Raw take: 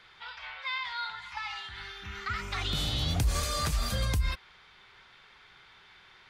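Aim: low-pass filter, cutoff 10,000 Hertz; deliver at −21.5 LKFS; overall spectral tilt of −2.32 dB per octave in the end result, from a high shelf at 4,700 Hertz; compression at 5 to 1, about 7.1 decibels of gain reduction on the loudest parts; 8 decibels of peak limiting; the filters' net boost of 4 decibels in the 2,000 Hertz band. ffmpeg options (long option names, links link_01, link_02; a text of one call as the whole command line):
ffmpeg -i in.wav -af "lowpass=10000,equalizer=frequency=2000:width_type=o:gain=3.5,highshelf=frequency=4700:gain=7.5,acompressor=threshold=-30dB:ratio=5,volume=14dB,alimiter=limit=-12.5dB:level=0:latency=1" out.wav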